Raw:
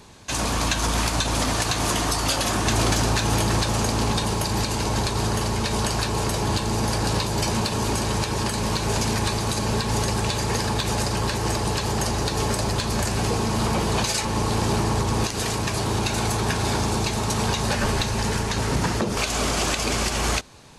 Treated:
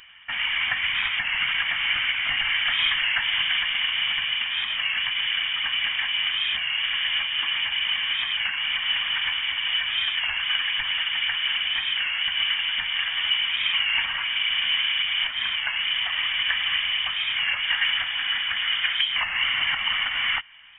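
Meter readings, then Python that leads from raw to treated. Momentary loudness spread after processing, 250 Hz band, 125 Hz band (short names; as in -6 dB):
3 LU, under -25 dB, under -25 dB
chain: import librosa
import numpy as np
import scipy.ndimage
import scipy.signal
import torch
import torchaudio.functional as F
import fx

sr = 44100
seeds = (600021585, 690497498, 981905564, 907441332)

y = scipy.signal.sosfilt(scipy.signal.butter(2, 270.0, 'highpass', fs=sr, output='sos'), x)
y = fx.fixed_phaser(y, sr, hz=800.0, stages=6)
y = fx.freq_invert(y, sr, carrier_hz=3400)
y = fx.record_warp(y, sr, rpm=33.33, depth_cents=100.0)
y = y * 10.0 ** (6.0 / 20.0)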